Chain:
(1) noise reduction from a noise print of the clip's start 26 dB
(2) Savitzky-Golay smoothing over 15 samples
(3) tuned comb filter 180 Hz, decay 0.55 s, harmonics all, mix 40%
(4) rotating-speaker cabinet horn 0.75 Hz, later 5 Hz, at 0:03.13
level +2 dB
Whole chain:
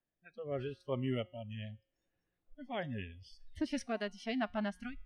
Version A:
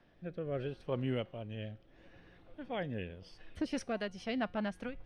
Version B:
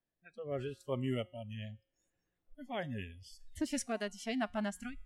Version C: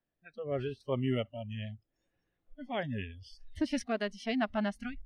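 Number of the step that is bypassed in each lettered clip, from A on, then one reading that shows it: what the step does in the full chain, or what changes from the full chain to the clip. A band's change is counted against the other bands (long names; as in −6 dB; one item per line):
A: 1, change in momentary loudness spread −3 LU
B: 2, 8 kHz band +10.0 dB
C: 3, change in integrated loudness +4.0 LU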